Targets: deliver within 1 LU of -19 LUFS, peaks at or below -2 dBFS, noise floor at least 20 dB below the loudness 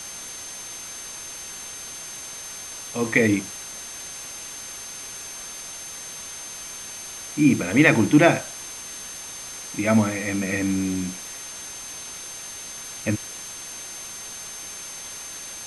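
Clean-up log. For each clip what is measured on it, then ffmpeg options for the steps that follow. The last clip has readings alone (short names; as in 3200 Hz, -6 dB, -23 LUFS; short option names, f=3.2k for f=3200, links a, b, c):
steady tone 6300 Hz; tone level -37 dBFS; noise floor -37 dBFS; noise floor target -46 dBFS; loudness -26.0 LUFS; peak -1.5 dBFS; loudness target -19.0 LUFS
-> -af "bandreject=f=6.3k:w=30"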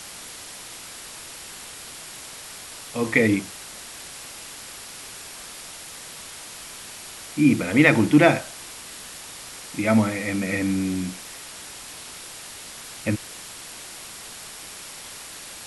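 steady tone none; noise floor -40 dBFS; noise floor target -43 dBFS
-> -af "afftdn=nr=6:nf=-40"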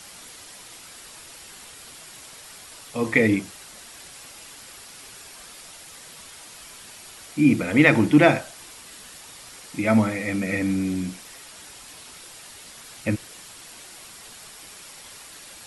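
noise floor -44 dBFS; loudness -21.5 LUFS; peak -2.0 dBFS; loudness target -19.0 LUFS
-> -af "volume=2.5dB,alimiter=limit=-2dB:level=0:latency=1"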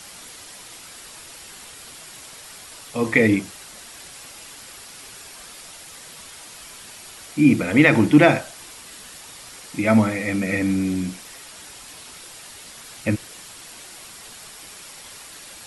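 loudness -19.5 LUFS; peak -2.0 dBFS; noise floor -42 dBFS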